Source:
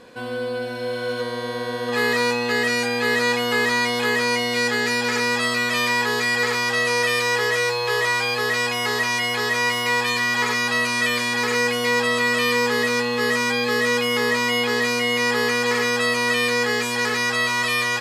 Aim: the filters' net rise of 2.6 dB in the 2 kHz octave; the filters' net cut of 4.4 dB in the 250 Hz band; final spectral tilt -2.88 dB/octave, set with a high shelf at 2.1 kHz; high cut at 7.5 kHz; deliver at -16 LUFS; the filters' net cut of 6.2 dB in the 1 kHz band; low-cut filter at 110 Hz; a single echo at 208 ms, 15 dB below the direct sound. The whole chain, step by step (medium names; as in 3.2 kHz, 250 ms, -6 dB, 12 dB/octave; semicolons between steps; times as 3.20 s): high-pass 110 Hz; low-pass 7.5 kHz; peaking EQ 250 Hz -4 dB; peaking EQ 1 kHz -8 dB; peaking EQ 2 kHz +8.5 dB; treble shelf 2.1 kHz -7 dB; delay 208 ms -15 dB; trim +3.5 dB